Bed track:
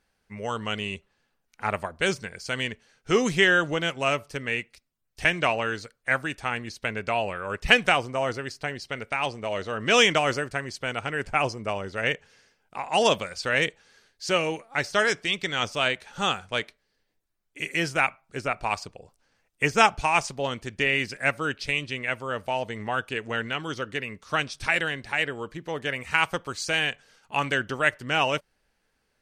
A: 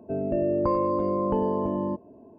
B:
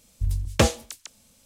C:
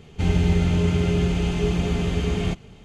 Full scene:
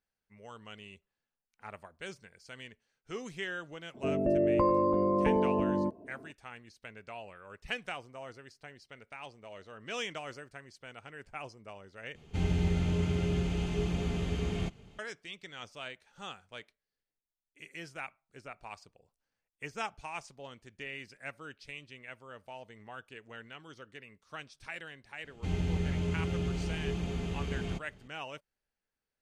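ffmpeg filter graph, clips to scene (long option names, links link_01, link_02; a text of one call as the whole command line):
ffmpeg -i bed.wav -i cue0.wav -i cue1.wav -i cue2.wav -filter_complex "[3:a]asplit=2[link_01][link_02];[0:a]volume=-18.5dB,asplit=2[link_03][link_04];[link_03]atrim=end=12.154[link_05];[link_01]atrim=end=2.84,asetpts=PTS-STARTPTS,volume=-9.5dB[link_06];[link_04]atrim=start=14.986[link_07];[1:a]atrim=end=2.38,asetpts=PTS-STARTPTS,volume=-2dB,afade=type=in:duration=0.004:curve=hsin,afade=type=out:start_time=2.376:duration=0.004:curve=hsin,adelay=3940[link_08];[link_02]atrim=end=2.84,asetpts=PTS-STARTPTS,volume=-12dB,afade=type=in:duration=0.004:curve=hsin,afade=type=out:start_time=2.836:duration=0.004:curve=hsin,adelay=25240[link_09];[link_05][link_06]acrossfade=duration=0.004:curve1=hsin:curve2=hsin[link_10];[link_10][link_07]acrossfade=duration=0.004:curve1=hsin:curve2=hsin[link_11];[link_11][link_08][link_09]amix=inputs=3:normalize=0" out.wav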